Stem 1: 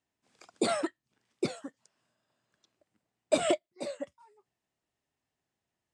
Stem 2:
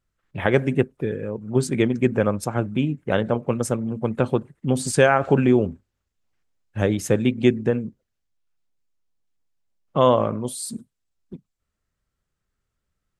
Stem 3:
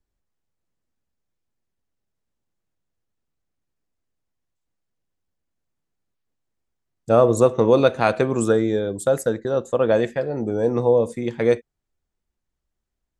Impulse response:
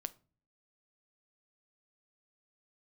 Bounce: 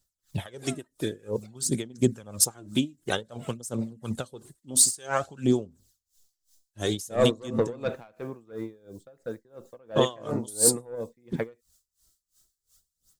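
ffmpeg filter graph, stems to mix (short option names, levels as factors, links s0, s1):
-filter_complex "[0:a]highpass=f=540:w=0.5412,highpass=f=540:w=1.3066,acompressor=threshold=0.0224:ratio=6,volume=0.355[s0];[1:a]dynaudnorm=f=110:g=3:m=2.99,aexciter=amount=7.2:drive=8.7:freq=3600,acrossover=split=870[s1][s2];[s1]aeval=exprs='val(0)*(1-0.5/2+0.5/2*cos(2*PI*5.3*n/s))':c=same[s3];[s2]aeval=exprs='val(0)*(1-0.5/2-0.5/2*cos(2*PI*5.3*n/s))':c=same[s4];[s3][s4]amix=inputs=2:normalize=0,volume=0.596,asplit=2[s5][s6];[2:a]lowpass=3700,asoftclip=type=tanh:threshold=0.316,volume=0.794[s7];[s6]apad=whole_len=581858[s8];[s7][s8]sidechaingate=range=0.355:threshold=0.0112:ratio=16:detection=peak[s9];[s0][s5]amix=inputs=2:normalize=0,aphaser=in_gain=1:out_gain=1:delay=3.3:decay=0.45:speed=0.53:type=sinusoidal,acompressor=threshold=0.158:ratio=4,volume=1[s10];[s9][s10]amix=inputs=2:normalize=0,aeval=exprs='val(0)*pow(10,-25*(0.5-0.5*cos(2*PI*2.9*n/s))/20)':c=same"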